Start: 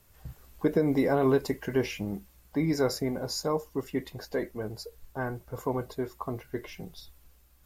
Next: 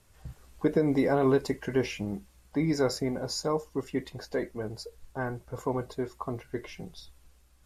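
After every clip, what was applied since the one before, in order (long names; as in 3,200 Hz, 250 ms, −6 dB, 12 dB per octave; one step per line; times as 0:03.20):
low-pass filter 11,000 Hz 24 dB per octave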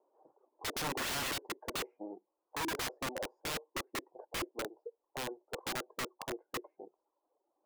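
reverb reduction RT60 0.79 s
elliptic band-pass filter 330–930 Hz, stop band 60 dB
wrap-around overflow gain 31.5 dB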